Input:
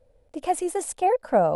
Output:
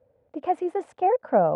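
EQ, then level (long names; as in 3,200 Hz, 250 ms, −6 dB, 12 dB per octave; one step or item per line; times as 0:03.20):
high-pass filter 89 Hz 24 dB per octave
low-pass filter 1,800 Hz 12 dB per octave
0.0 dB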